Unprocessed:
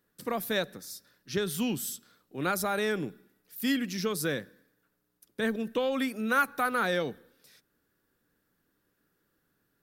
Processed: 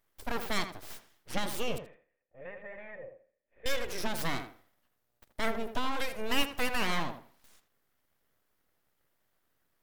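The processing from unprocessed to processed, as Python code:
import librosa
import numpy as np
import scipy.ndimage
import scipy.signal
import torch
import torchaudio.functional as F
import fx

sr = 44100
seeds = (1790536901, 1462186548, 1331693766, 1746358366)

y = np.abs(x)
y = fx.formant_cascade(y, sr, vowel='e', at=(1.78, 3.66))
y = fx.echo_tape(y, sr, ms=81, feedback_pct=24, wet_db=-7.0, lp_hz=2000.0, drive_db=16.0, wow_cents=10)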